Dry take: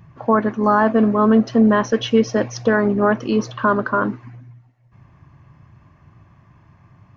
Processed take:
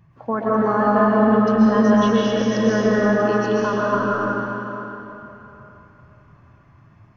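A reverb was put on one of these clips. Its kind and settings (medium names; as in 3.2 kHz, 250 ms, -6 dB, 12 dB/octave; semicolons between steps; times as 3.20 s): algorithmic reverb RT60 3.5 s, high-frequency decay 0.85×, pre-delay 95 ms, DRR -6.5 dB; trim -8 dB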